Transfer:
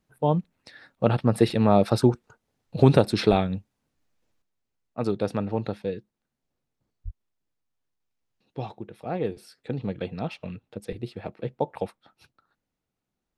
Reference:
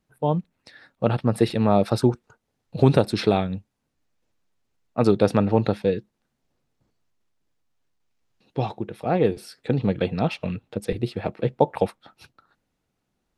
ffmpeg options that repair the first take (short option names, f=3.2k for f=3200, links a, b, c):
-filter_complex "[0:a]asplit=3[a][b][c];[a]afade=t=out:st=3.29:d=0.02[d];[b]highpass=f=140:w=0.5412,highpass=f=140:w=1.3066,afade=t=in:st=3.29:d=0.02,afade=t=out:st=3.41:d=0.02[e];[c]afade=t=in:st=3.41:d=0.02[f];[d][e][f]amix=inputs=3:normalize=0,asplit=3[g][h][i];[g]afade=t=out:st=7.04:d=0.02[j];[h]highpass=f=140:w=0.5412,highpass=f=140:w=1.3066,afade=t=in:st=7.04:d=0.02,afade=t=out:st=7.16:d=0.02[k];[i]afade=t=in:st=7.16:d=0.02[l];[j][k][l]amix=inputs=3:normalize=0,asetnsamples=n=441:p=0,asendcmd='4.42 volume volume 8dB',volume=0dB"